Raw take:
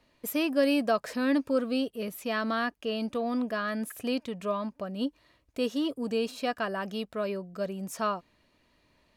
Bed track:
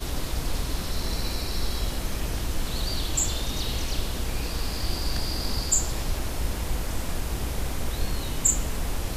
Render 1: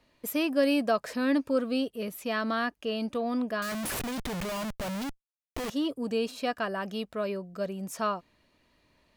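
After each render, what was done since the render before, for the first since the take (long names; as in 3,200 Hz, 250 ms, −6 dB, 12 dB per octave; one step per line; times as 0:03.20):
0:03.62–0:05.70: comparator with hysteresis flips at −46.5 dBFS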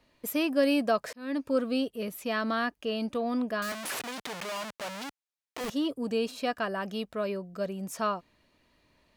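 0:01.13–0:01.55: fade in linear
0:03.72–0:05.61: meter weighting curve A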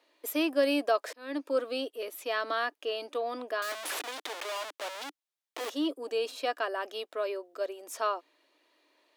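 elliptic high-pass filter 300 Hz, stop band 40 dB
parametric band 3,500 Hz +3.5 dB 0.34 octaves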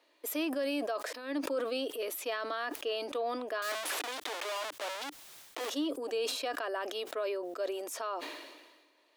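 brickwall limiter −26 dBFS, peak gain reduction 11.5 dB
level that may fall only so fast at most 42 dB per second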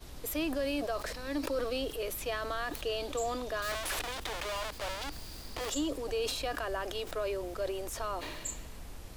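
mix in bed track −17.5 dB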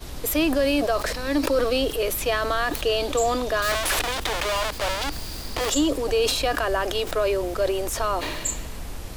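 level +11.5 dB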